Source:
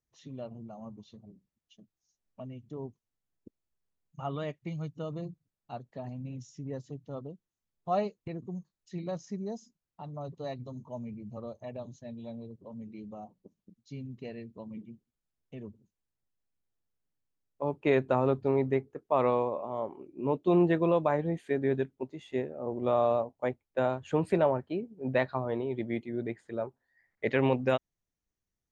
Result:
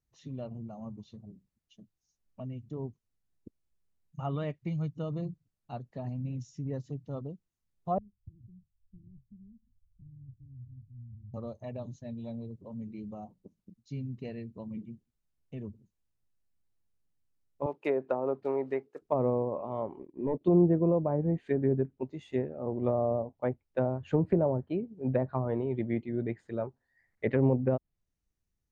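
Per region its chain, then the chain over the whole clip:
0:07.98–0:11.34: inverse Chebyshev low-pass filter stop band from 570 Hz, stop band 70 dB + comb filter 3.1 ms, depth 85% + multiband upward and downward compressor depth 70%
0:17.66–0:19.02: one scale factor per block 7 bits + high-pass filter 440 Hz
0:19.99–0:20.41: spectral tilt +4 dB per octave + leveller curve on the samples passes 2 + moving average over 32 samples
whole clip: notch filter 3,300 Hz, Q 23; treble cut that deepens with the level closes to 630 Hz, closed at −23.5 dBFS; low-shelf EQ 200 Hz +9.5 dB; level −1.5 dB

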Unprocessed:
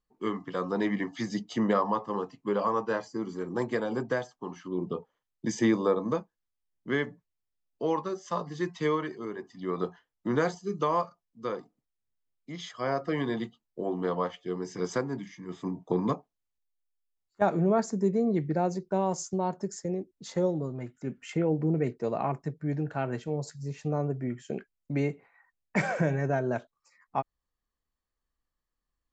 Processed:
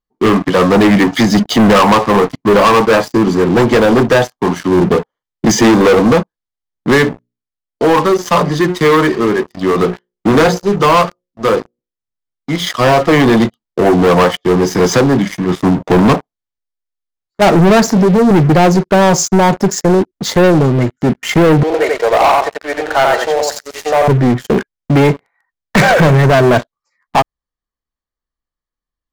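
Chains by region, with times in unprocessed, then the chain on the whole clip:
0:06.98–0:12.67: mains-hum notches 60/120/180/240/300/360/420/480/540/600 Hz + shaped tremolo triangle 1 Hz, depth 45%
0:17.87–0:18.31: Chebyshev band-pass filter 160–5,700 Hz, order 3 + downward compressor 4 to 1, threshold −28 dBFS + double-tracking delay 33 ms −9.5 dB
0:21.63–0:24.08: high-pass filter 560 Hz 24 dB per octave + repeating echo 88 ms, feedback 21%, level −3.5 dB
whole clip: low-pass filter 6,000 Hz; notch filter 2,600 Hz, Q 6.7; leveller curve on the samples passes 5; level +9 dB

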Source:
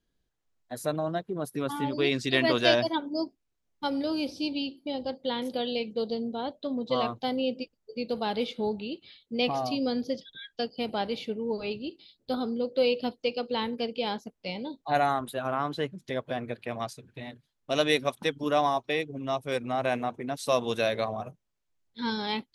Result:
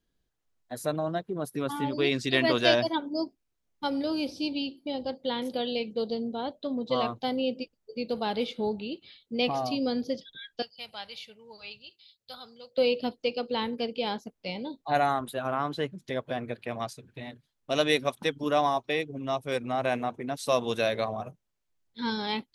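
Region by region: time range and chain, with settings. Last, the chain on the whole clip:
0:10.62–0:12.78: high-pass filter 66 Hz + guitar amp tone stack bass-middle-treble 10-0-10
whole clip: no processing

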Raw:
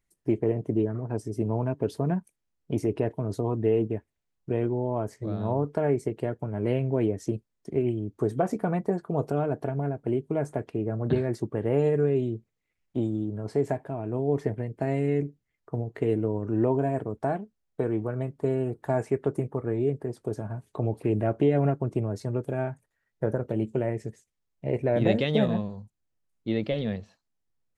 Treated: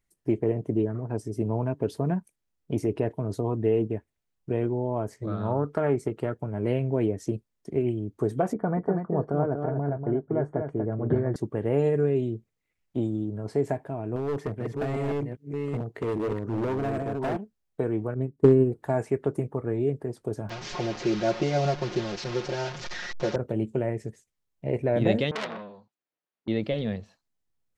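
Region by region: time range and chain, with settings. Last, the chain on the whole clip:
0:05.27–0:06.34: parametric band 1,300 Hz +12 dB 0.29 octaves + highs frequency-modulated by the lows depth 0.14 ms
0:08.53–0:11.36: Savitzky-Golay smoothing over 41 samples + single-tap delay 240 ms −6 dB
0:14.16–0:17.37: delay that plays each chunk backwards 403 ms, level −4.5 dB + high-pass filter 65 Hz 6 dB per octave + gain into a clipping stage and back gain 24.5 dB
0:18.14–0:18.72: low shelf with overshoot 530 Hz +10.5 dB, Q 1.5 + hard clipping −7 dBFS + expander for the loud parts 2.5 to 1, over −25 dBFS
0:20.49–0:23.36: linear delta modulator 32 kbit/s, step −31.5 dBFS + parametric band 120 Hz −6.5 dB 2.6 octaves + comb filter 5.6 ms, depth 94%
0:25.31–0:26.48: band-pass filter 360–3,400 Hz + all-pass dispersion highs, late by 48 ms, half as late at 1,600 Hz + saturating transformer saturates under 3,000 Hz
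whole clip: no processing

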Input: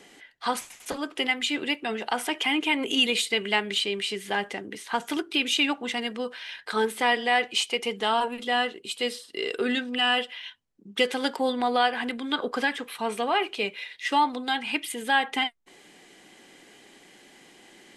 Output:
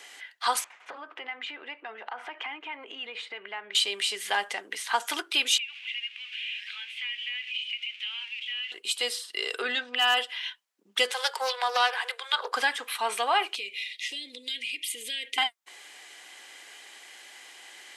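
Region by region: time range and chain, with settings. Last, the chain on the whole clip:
0:00.64–0:03.75: low-pass filter 1,500 Hz + downward compressor 4 to 1, threshold −37 dBFS
0:05.58–0:08.72: spike at every zero crossing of −20.5 dBFS + flat-topped band-pass 2,600 Hz, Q 3.1 + downward compressor 2 to 1, threshold −40 dBFS
0:09.62–0:10.17: band-pass filter 140–4,700 Hz + hard clipping −16 dBFS
0:11.11–0:12.52: Butterworth high-pass 390 Hz 96 dB per octave + parametric band 680 Hz −5.5 dB 0.47 octaves + highs frequency-modulated by the lows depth 0.27 ms
0:13.56–0:15.38: inverse Chebyshev band-stop filter 690–1,500 Hz + downward compressor 4 to 1, threshold −35 dBFS
whole clip: high-pass filter 940 Hz 12 dB per octave; dynamic equaliser 2,200 Hz, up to −7 dB, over −38 dBFS, Q 0.9; level +6.5 dB

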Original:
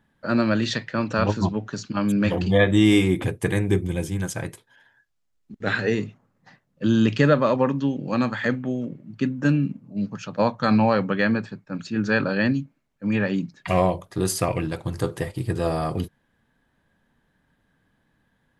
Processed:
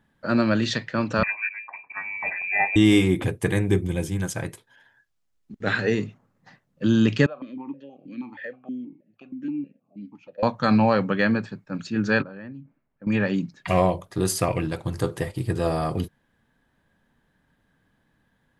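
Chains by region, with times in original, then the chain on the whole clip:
0:01.23–0:02.76: parametric band 270 Hz −11 dB 1.5 octaves + phaser with its sweep stopped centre 1,700 Hz, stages 8 + voice inversion scrambler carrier 2,500 Hz
0:07.26–0:10.43: downward compressor 4 to 1, threshold −21 dBFS + formant filter that steps through the vowels 6.3 Hz
0:12.22–0:13.07: low-pass filter 1,900 Hz + downward compressor 4 to 1, threshold −39 dBFS
whole clip: no processing

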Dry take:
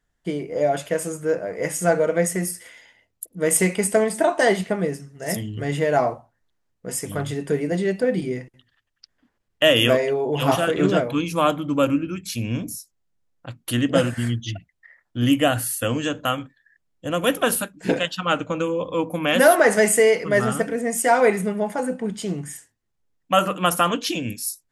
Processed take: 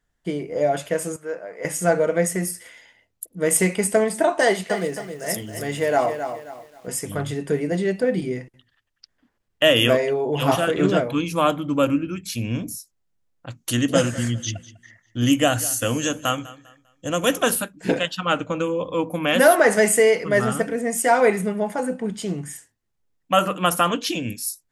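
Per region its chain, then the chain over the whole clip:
0:01.16–0:01.65: high-pass filter 1,000 Hz 6 dB per octave + high-shelf EQ 3,000 Hz −10 dB
0:04.43–0:06.88: bass and treble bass −7 dB, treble +3 dB + feedback echo at a low word length 266 ms, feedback 35%, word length 8 bits, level −8.5 dB
0:13.50–0:17.50: parametric band 6,400 Hz +13 dB 0.59 octaves + repeating echo 199 ms, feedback 31%, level −18.5 dB
whole clip: no processing

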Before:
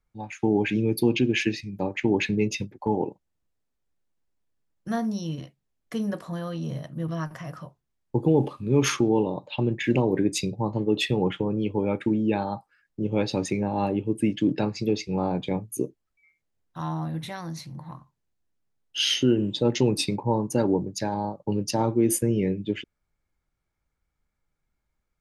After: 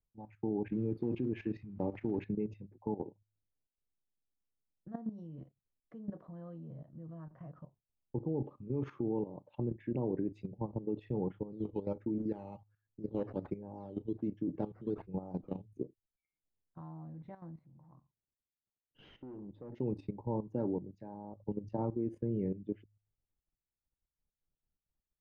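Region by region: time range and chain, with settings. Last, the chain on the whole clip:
0:00.72–0:02.24: one scale factor per block 5 bits + envelope flattener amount 50%
0:11.51–0:15.66: sample-and-hold swept by an LFO 9× 1.3 Hz + double-tracking delay 12 ms −12 dB
0:17.51–0:19.73: bass and treble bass −2 dB, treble −13 dB + tube saturation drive 24 dB, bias 0.25 + one half of a high-frequency compander decoder only
whole clip: Bessel low-pass filter 650 Hz, order 2; hum removal 52.16 Hz, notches 2; output level in coarse steps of 13 dB; level −7.5 dB

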